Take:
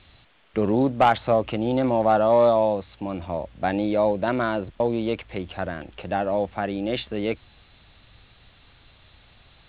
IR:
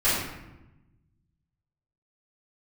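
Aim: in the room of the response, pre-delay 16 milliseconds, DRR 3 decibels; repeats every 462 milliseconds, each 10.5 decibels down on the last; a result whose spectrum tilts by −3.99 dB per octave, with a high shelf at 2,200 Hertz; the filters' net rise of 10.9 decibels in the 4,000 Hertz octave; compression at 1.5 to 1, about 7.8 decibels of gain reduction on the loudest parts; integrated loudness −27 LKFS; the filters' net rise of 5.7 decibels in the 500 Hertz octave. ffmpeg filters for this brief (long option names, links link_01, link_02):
-filter_complex "[0:a]equalizer=frequency=500:width_type=o:gain=6.5,highshelf=frequency=2200:gain=6.5,equalizer=frequency=4000:width_type=o:gain=8.5,acompressor=threshold=-31dB:ratio=1.5,aecho=1:1:462|924|1386:0.299|0.0896|0.0269,asplit=2[link_01][link_02];[1:a]atrim=start_sample=2205,adelay=16[link_03];[link_02][link_03]afir=irnorm=-1:irlink=0,volume=-18.5dB[link_04];[link_01][link_04]amix=inputs=2:normalize=0,volume=-3.5dB"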